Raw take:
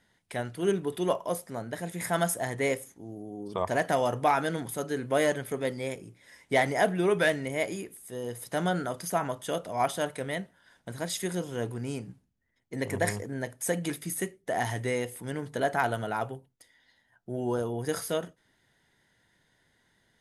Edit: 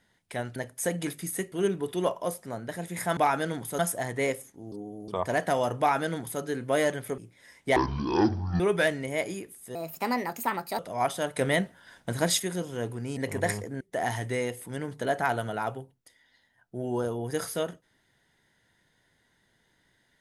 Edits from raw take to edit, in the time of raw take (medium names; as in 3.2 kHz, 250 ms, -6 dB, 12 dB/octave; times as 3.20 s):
3.14–3.50 s: reverse
4.21–4.83 s: copy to 2.21 s
5.60–6.02 s: delete
6.60–7.02 s: speed 50%
8.17–9.58 s: speed 136%
10.16–11.19 s: gain +8 dB
11.96–12.75 s: delete
13.39–14.35 s: move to 0.56 s